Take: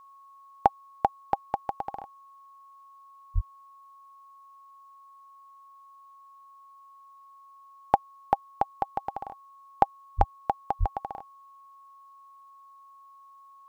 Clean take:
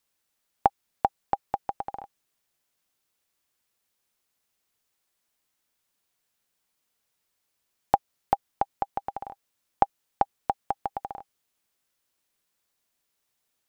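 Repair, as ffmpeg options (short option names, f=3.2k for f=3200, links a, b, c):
-filter_complex "[0:a]bandreject=f=1.1k:w=30,asplit=3[a][b][c];[a]afade=t=out:st=3.34:d=0.02[d];[b]highpass=f=140:w=0.5412,highpass=f=140:w=1.3066,afade=t=in:st=3.34:d=0.02,afade=t=out:st=3.46:d=0.02[e];[c]afade=t=in:st=3.46:d=0.02[f];[d][e][f]amix=inputs=3:normalize=0,asplit=3[g][h][i];[g]afade=t=out:st=10.17:d=0.02[j];[h]highpass=f=140:w=0.5412,highpass=f=140:w=1.3066,afade=t=in:st=10.17:d=0.02,afade=t=out:st=10.29:d=0.02[k];[i]afade=t=in:st=10.29:d=0.02[l];[j][k][l]amix=inputs=3:normalize=0,asplit=3[m][n][o];[m]afade=t=out:st=10.79:d=0.02[p];[n]highpass=f=140:w=0.5412,highpass=f=140:w=1.3066,afade=t=in:st=10.79:d=0.02,afade=t=out:st=10.91:d=0.02[q];[o]afade=t=in:st=10.91:d=0.02[r];[p][q][r]amix=inputs=3:normalize=0"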